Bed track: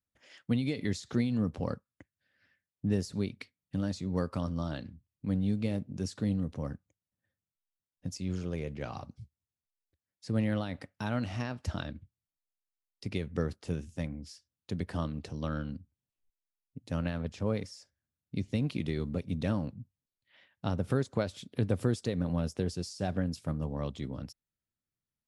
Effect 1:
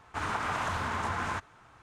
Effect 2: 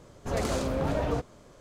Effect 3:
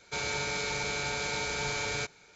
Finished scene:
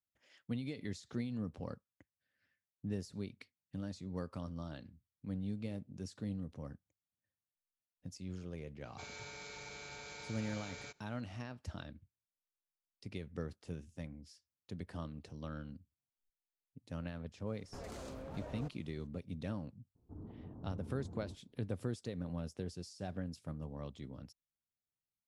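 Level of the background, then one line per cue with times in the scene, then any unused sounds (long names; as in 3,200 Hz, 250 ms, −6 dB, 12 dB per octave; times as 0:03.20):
bed track −10 dB
0:08.86: mix in 3 −16.5 dB
0:17.47: mix in 2 −10.5 dB + output level in coarse steps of 12 dB
0:19.95: mix in 1 −3 dB + transistor ladder low-pass 400 Hz, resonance 25%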